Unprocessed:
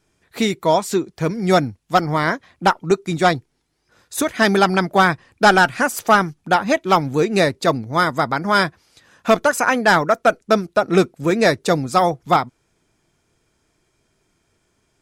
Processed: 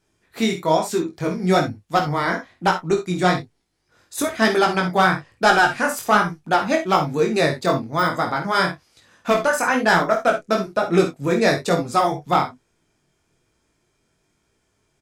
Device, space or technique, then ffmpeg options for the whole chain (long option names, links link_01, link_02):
double-tracked vocal: -filter_complex "[0:a]asplit=2[link_01][link_02];[link_02]adelay=28,volume=-12.5dB[link_03];[link_01][link_03]amix=inputs=2:normalize=0,flanger=delay=17.5:depth=4.7:speed=1.1,asettb=1/sr,asplit=3[link_04][link_05][link_06];[link_04]atrim=end=7.484[link_07];[link_05]atrim=start=7.48:end=8.42,asetpts=PTS-STARTPTS,afade=type=in:duration=0.004:curve=qsin,afade=type=out:start_time=0.936:duration=0.004:curve=qsin,deesser=0.6[link_08];[link_06]atrim=start=8.416[link_09];[link_07][link_08]acrossfade=duration=0.004:curve1=hsin:curve2=qsin[link_10];[link_10][link_09]acrossfade=duration=0.004:curve1=qsin:curve2=hsin,aecho=1:1:50|62:0.299|0.237"